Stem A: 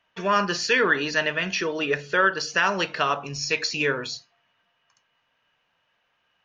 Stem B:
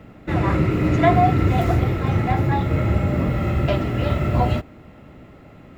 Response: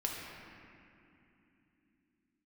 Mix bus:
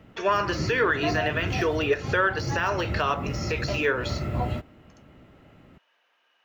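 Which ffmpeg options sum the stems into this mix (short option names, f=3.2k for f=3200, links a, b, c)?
-filter_complex "[0:a]alimiter=limit=-14dB:level=0:latency=1:release=214,deesser=1,highpass=f=280:w=0.5412,highpass=f=280:w=1.3066,volume=2.5dB,asplit=2[a][b];[1:a]volume=-8.5dB[c];[b]apad=whole_len=254893[d];[c][d]sidechaincompress=threshold=-30dB:ratio=8:attack=36:release=219[e];[a][e]amix=inputs=2:normalize=0"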